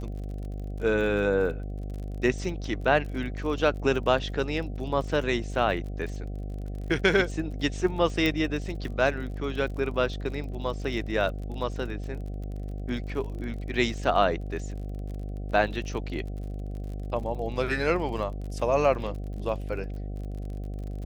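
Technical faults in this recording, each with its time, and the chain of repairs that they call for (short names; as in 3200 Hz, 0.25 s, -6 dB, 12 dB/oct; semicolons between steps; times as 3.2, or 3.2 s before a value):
buzz 50 Hz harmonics 15 -34 dBFS
crackle 42/s -37 dBFS
8.26 pop -14 dBFS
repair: de-click; de-hum 50 Hz, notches 15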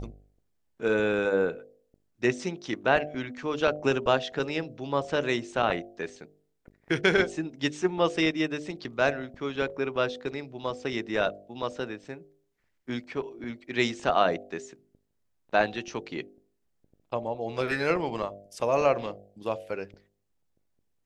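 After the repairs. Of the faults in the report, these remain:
8.26 pop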